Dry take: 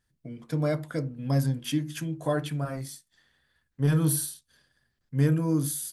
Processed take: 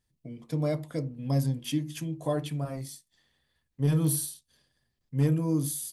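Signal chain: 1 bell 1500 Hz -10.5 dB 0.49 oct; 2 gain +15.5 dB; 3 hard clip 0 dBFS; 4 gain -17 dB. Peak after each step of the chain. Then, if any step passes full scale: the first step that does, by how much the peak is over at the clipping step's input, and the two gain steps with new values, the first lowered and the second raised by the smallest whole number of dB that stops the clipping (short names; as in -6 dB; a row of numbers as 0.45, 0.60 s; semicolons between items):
-12.5, +3.0, 0.0, -17.0 dBFS; step 2, 3.0 dB; step 2 +12.5 dB, step 4 -14 dB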